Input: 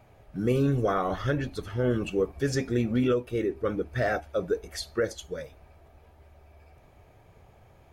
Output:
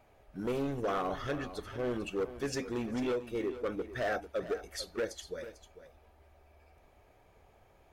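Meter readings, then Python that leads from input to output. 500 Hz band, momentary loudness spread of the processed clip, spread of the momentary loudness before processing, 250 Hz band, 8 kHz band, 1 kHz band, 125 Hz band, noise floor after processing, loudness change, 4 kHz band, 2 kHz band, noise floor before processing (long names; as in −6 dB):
−6.5 dB, 8 LU, 9 LU, −8.5 dB, −4.5 dB, −5.0 dB, −14.5 dB, −64 dBFS, −7.5 dB, −4.0 dB, −5.5 dB, −57 dBFS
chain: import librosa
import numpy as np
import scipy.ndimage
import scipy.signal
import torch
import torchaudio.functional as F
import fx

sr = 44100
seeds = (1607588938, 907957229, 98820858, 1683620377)

y = np.clip(x, -10.0 ** (-22.5 / 20.0), 10.0 ** (-22.5 / 20.0))
y = fx.peak_eq(y, sr, hz=120.0, db=-9.5, octaves=1.4)
y = y + 10.0 ** (-13.5 / 20.0) * np.pad(y, (int(447 * sr / 1000.0), 0))[:len(y)]
y = F.gain(torch.from_numpy(y), -4.5).numpy()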